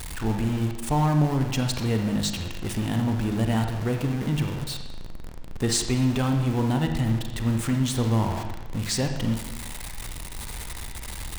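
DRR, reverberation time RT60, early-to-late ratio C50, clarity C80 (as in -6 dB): 4.5 dB, 1.1 s, 5.5 dB, 8.0 dB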